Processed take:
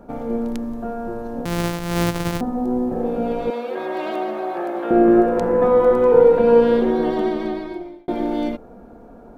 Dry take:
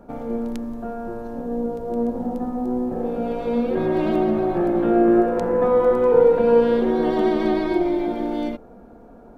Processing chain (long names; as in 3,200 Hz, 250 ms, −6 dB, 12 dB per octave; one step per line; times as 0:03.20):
0:01.45–0:02.41: samples sorted by size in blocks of 256 samples
0:03.50–0:04.91: high-pass filter 590 Hz 12 dB per octave
0:06.75–0:08.08: fade out
level +2.5 dB